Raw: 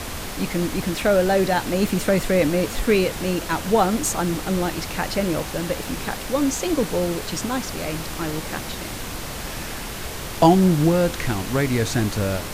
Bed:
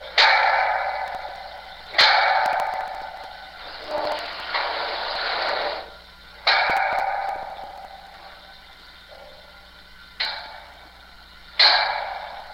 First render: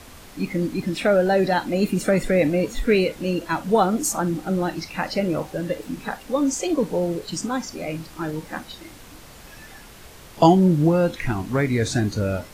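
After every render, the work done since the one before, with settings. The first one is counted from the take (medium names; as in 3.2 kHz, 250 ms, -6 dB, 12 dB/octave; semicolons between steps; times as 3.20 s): noise print and reduce 13 dB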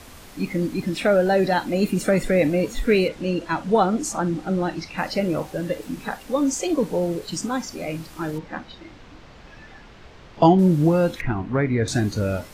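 3.08–4.98 s: distance through air 55 m; 8.38–10.59 s: distance through air 170 m; 11.21–11.88 s: low-pass 2.2 kHz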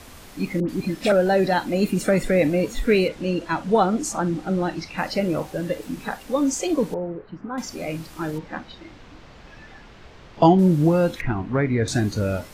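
0.60–1.12 s: phase dispersion highs, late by 88 ms, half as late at 1.5 kHz; 6.94–7.58 s: four-pole ladder low-pass 2 kHz, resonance 25%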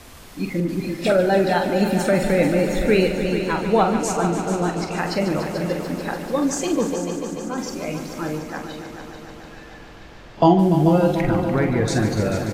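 doubling 46 ms -8.5 dB; on a send: multi-head delay 146 ms, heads all three, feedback 69%, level -13 dB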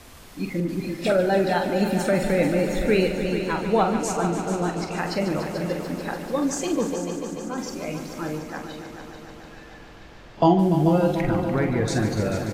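trim -3 dB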